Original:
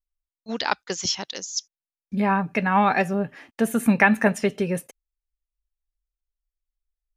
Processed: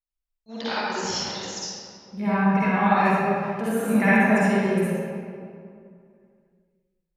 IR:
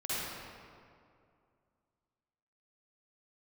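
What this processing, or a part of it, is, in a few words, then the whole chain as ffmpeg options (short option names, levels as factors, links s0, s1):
stairwell: -filter_complex "[1:a]atrim=start_sample=2205[s0];[0:a][s0]afir=irnorm=-1:irlink=0,volume=0.501"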